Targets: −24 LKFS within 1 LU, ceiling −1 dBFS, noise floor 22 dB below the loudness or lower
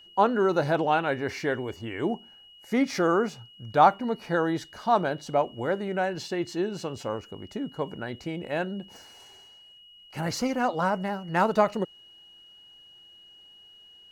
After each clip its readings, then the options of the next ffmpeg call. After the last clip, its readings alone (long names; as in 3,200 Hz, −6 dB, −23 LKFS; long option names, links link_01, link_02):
interfering tone 2,900 Hz; level of the tone −50 dBFS; integrated loudness −27.5 LKFS; sample peak −6.5 dBFS; target loudness −24.0 LKFS
→ -af "bandreject=frequency=2900:width=30"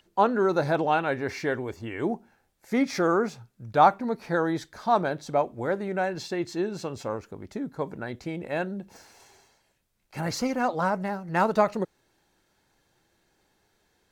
interfering tone none found; integrated loudness −27.5 LKFS; sample peak −6.5 dBFS; target loudness −24.0 LKFS
→ -af "volume=3.5dB"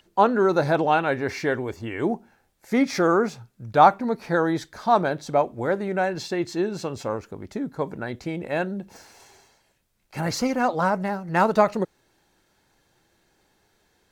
integrated loudness −24.0 LKFS; sample peak −3.0 dBFS; background noise floor −67 dBFS